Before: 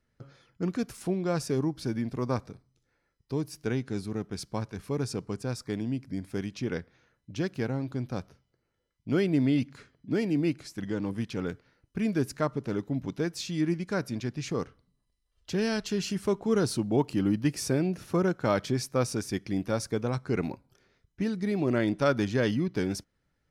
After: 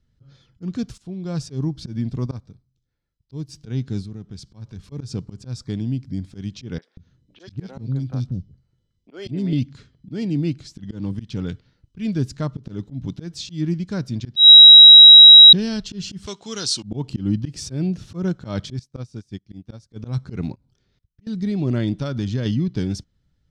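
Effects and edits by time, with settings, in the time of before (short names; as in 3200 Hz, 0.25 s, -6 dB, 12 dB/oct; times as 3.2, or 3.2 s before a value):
0.98–1.7 fade in equal-power, from -21 dB
2.26–3.49 upward expander, over -46 dBFS
4.02–4.92 compressor 2:1, threshold -44 dBFS
6.78–9.53 three bands offset in time mids, highs, lows 40/190 ms, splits 380/2600 Hz
11.47–12.12 dynamic EQ 2900 Hz, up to +7 dB, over -55 dBFS, Q 0.92
14.36–15.53 bleep 3850 Hz -7.5 dBFS
16.26–16.83 weighting filter ITU-R 468
18.79–19.96 upward expander 2.5:1, over -40 dBFS
20.53–21.27 level quantiser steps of 24 dB
21.94–22.46 compressor 2:1, threshold -27 dBFS
whole clip: tone controls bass +15 dB, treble -9 dB; auto swell 0.134 s; band shelf 5100 Hz +13 dB; gain -3 dB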